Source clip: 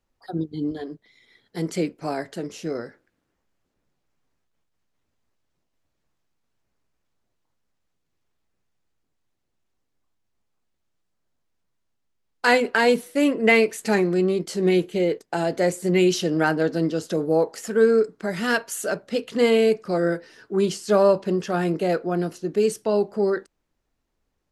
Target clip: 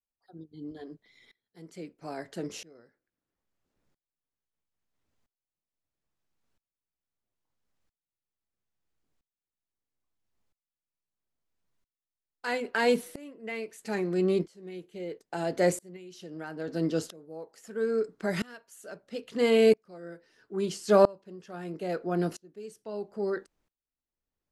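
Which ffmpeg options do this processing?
-filter_complex "[0:a]asettb=1/sr,asplit=3[a][b][c];[a]atrim=end=15.964[d];[b]atrim=start=15.96:end=16.68,asetpts=PTS-STARTPTS,afade=t=in:d=0.004:c=qsin,afade=t=out:st=0.716:d=0.004:c=qsin,acompressor=threshold=-21dB:ratio=6[e];[c]atrim=start=16.676[f];[d][e]acrossfade=d=0.004:c1=hsin:c2=qsin[g];[g][f]acrossfade=d=0.004:c1=qsin:c2=hsin,aeval=exprs='val(0)*pow(10,-28*if(lt(mod(-0.76*n/s,1),2*abs(-0.76)/1000),1-mod(-0.76*n/s,1)/(2*abs(-0.76)/1000),(mod(-0.76*n/s,1)-2*abs(-0.76)/1000)/(1-2*abs(-0.76)/1000))/20)':c=same"

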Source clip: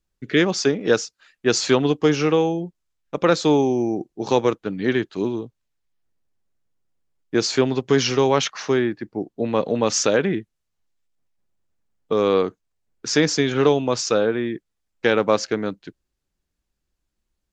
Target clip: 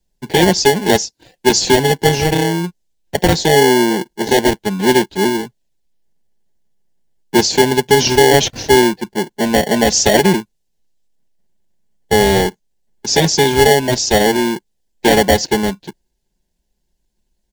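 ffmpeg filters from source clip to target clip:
-filter_complex "[0:a]aecho=1:1:5.1:0.9,acrossover=split=200|2400[a][b][c];[b]acrusher=samples=35:mix=1:aa=0.000001[d];[a][d][c]amix=inputs=3:normalize=0,alimiter=level_in=6.5dB:limit=-1dB:release=50:level=0:latency=1,volume=-1dB"

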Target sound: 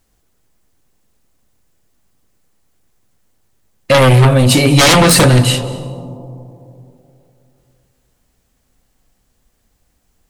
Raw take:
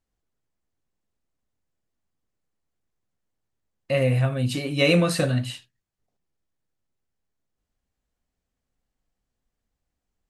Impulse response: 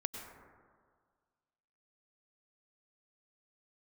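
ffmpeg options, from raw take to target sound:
-filter_complex "[0:a]highshelf=f=7.6k:g=8.5,aeval=exprs='0.473*sin(PI/2*4.47*val(0)/0.473)':c=same,asplit=2[a][b];[1:a]atrim=start_sample=2205,asetrate=24255,aresample=44100[c];[b][c]afir=irnorm=-1:irlink=0,volume=-10.5dB[d];[a][d]amix=inputs=2:normalize=0,volume=-1dB"

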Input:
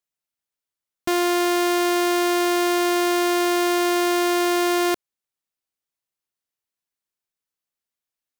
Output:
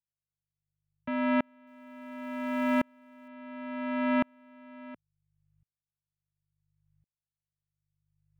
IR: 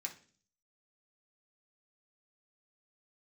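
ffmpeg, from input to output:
-filter_complex "[0:a]aeval=exprs='val(0)+0.00224*(sin(2*PI*50*n/s)+sin(2*PI*2*50*n/s)/2+sin(2*PI*3*50*n/s)/3+sin(2*PI*4*50*n/s)/4+sin(2*PI*5*50*n/s)/5)':c=same,highpass=f=180:t=q:w=0.5412,highpass=f=180:t=q:w=1.307,lowpass=f=2.8k:t=q:w=0.5176,lowpass=f=2.8k:t=q:w=0.7071,lowpass=f=2.8k:t=q:w=1.932,afreqshift=-98,asettb=1/sr,asplit=3[a][b][c];[a]atrim=end=1.674[d];[b]atrim=start=1.67:end=3.28,asetpts=PTS-STARTPTS,afade=t=in:d=0.004:c=qsin,afade=t=out:st=1.606:d=0.004:c=qsin,aeval=exprs='val(0)*gte(abs(val(0)),0.0158)':c=same[e];[c]atrim=start=3.276[f];[d][e]acrossfade=d=0.004:c1=hsin:c2=qsin[g];[g][f]acrossfade=d=0.004:c1=qsin:c2=hsin,aeval=exprs='val(0)*pow(10,-39*if(lt(mod(-0.71*n/s,1),2*abs(-0.71)/1000),1-mod(-0.71*n/s,1)/(2*abs(-0.71)/1000),(mod(-0.71*n/s,1)-2*abs(-0.71)/1000)/(1-2*abs(-0.71)/1000))/20)':c=same,volume=-2.5dB"

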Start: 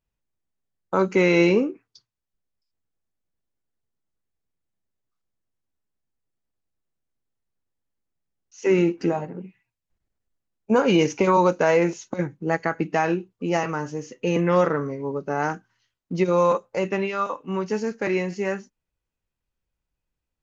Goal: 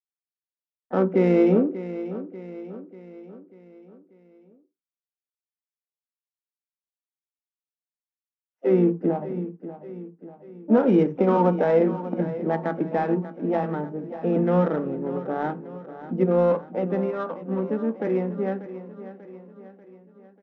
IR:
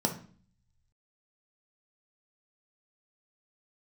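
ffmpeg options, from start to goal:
-filter_complex "[0:a]highpass=f=78:w=0.5412,highpass=f=78:w=1.3066,asplit=2[a][b];[b]asetrate=58866,aresample=44100,atempo=0.749154,volume=-12dB[c];[a][c]amix=inputs=2:normalize=0,agate=range=-33dB:threshold=-39dB:ratio=3:detection=peak,highshelf=f=2.9k:g=-10.5,adynamicsmooth=sensitivity=1.5:basefreq=1.2k,aemphasis=mode=reproduction:type=75fm,aecho=1:1:590|1180|1770|2360|2950:0.211|0.108|0.055|0.028|0.0143,asplit=2[d][e];[1:a]atrim=start_sample=2205,atrim=end_sample=4410[f];[e][f]afir=irnorm=-1:irlink=0,volume=-14dB[g];[d][g]amix=inputs=2:normalize=0,volume=-5.5dB"

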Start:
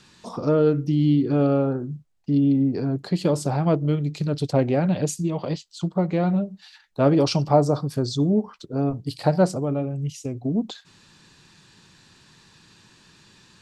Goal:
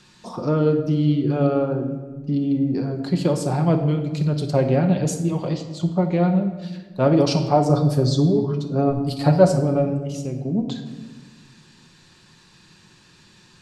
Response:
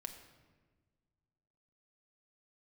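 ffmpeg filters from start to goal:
-filter_complex "[0:a]asettb=1/sr,asplit=3[a][b][c];[a]atrim=end=7.694[d];[b]atrim=start=7.69:end=9.99,asetpts=PTS-STARTPTS,afade=t=in:d=0.004:c=qsin,afade=t=out:st=2.296:d=0.004:c=qsin,aecho=1:1:7.2:0.81,atrim=end_sample=101430[e];[c]atrim=start=9.986[f];[d][e]acrossfade=d=0.004:c1=hsin:c2=qsin[g];[g][f]acrossfade=d=0.004:c1=qsin:c2=hsin[h];[1:a]atrim=start_sample=2205[i];[h][i]afir=irnorm=-1:irlink=0,volume=4.5dB"

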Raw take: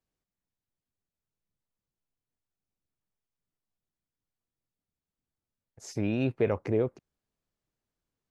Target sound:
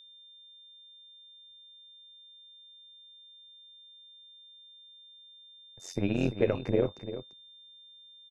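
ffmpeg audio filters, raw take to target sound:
-af "tremolo=f=90:d=0.889,aecho=1:1:342:0.266,aeval=exprs='val(0)+0.00178*sin(2*PI*3600*n/s)':c=same,volume=3.5dB"

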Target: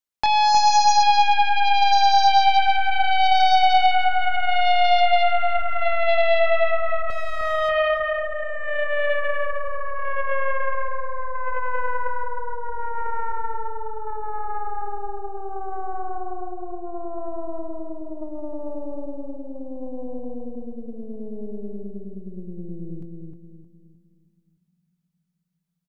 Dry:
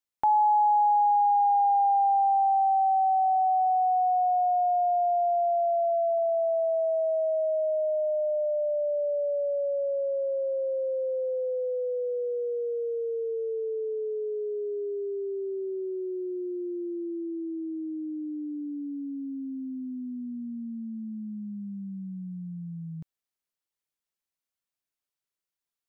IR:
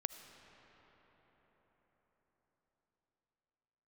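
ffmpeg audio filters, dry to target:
-filter_complex "[0:a]asettb=1/sr,asplit=3[a][b][c];[a]atrim=end=7.104[d];[b]atrim=start=7.1:end=7.69,asetpts=PTS-STARTPTS,afade=t=in:d=0.004:c=qsin,afade=t=out:st=0.586:d=0.004:c=qsin,aeval=exprs='max(val(0),0)':c=same[e];[c]atrim=start=7.686[f];[d][e]acrossfade=d=0.004:c1=hsin:c2=qsin[g];[g][f]acrossfade=d=0.004:c1=qsin:c2=hsin,asplit=2[h][i];[1:a]atrim=start_sample=2205,adelay=24[j];[i][j]afir=irnorm=-1:irlink=0,volume=-8.5dB[k];[h][k]amix=inputs=2:normalize=0,aeval=exprs='0.178*(cos(1*acos(clip(val(0)/0.178,-1,1)))-cos(1*PI/2))+0.0447*(cos(7*acos(clip(val(0)/0.178,-1,1)))-cos(7*PI/2))+0.0355*(cos(8*acos(clip(val(0)/0.178,-1,1)))-cos(8*PI/2))':c=same,asplit=2[l][m];[m]adelay=310,lowpass=f=1k:p=1,volume=-3dB,asplit=2[n][o];[o]adelay=310,lowpass=f=1k:p=1,volume=0.4,asplit=2[p][q];[q]adelay=310,lowpass=f=1k:p=1,volume=0.4,asplit=2[r][s];[s]adelay=310,lowpass=f=1k:p=1,volume=0.4,asplit=2[t][u];[u]adelay=310,lowpass=f=1k:p=1,volume=0.4[v];[l][n][p][r][t][v]amix=inputs=6:normalize=0,volume=2dB"

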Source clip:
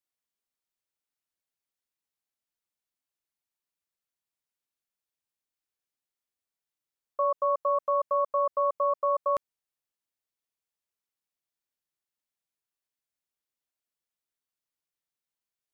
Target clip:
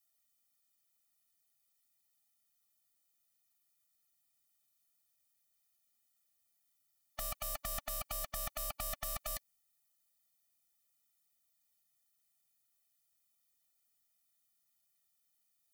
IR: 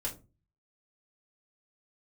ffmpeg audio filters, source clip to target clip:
-af "aeval=exprs='0.0282*(abs(mod(val(0)/0.0282+3,4)-2)-1)':c=same,crystalizer=i=2:c=0,afftfilt=real='re*eq(mod(floor(b*sr/1024/290),2),0)':imag='im*eq(mod(floor(b*sr/1024/290),2),0)':win_size=1024:overlap=0.75,volume=5dB"

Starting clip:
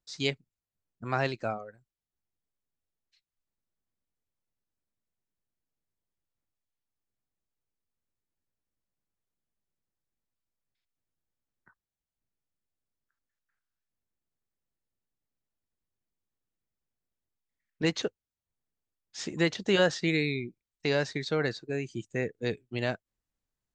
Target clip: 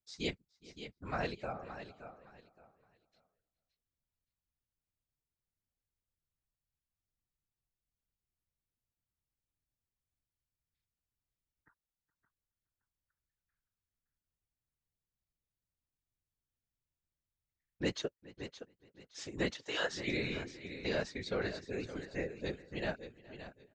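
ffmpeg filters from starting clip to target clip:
-filter_complex "[0:a]asplit=3[a][b][c];[a]afade=t=out:st=19.54:d=0.02[d];[b]highpass=660,afade=t=in:st=19.54:d=0.02,afade=t=out:st=20.06:d=0.02[e];[c]afade=t=in:st=20.06:d=0.02[f];[d][e][f]amix=inputs=3:normalize=0,asplit=2[g][h];[h]aecho=0:1:569|1138|1707:0.282|0.0648|0.0149[i];[g][i]amix=inputs=2:normalize=0,afftfilt=real='hypot(re,im)*cos(2*PI*random(0))':imag='hypot(re,im)*sin(2*PI*random(1))':win_size=512:overlap=0.75,asplit=2[j][k];[k]adelay=419,lowpass=f=3.8k:p=1,volume=-20.5dB,asplit=2[l][m];[m]adelay=419,lowpass=f=3.8k:p=1,volume=0.16[n];[l][n]amix=inputs=2:normalize=0[o];[j][o]amix=inputs=2:normalize=0,volume=-1.5dB"

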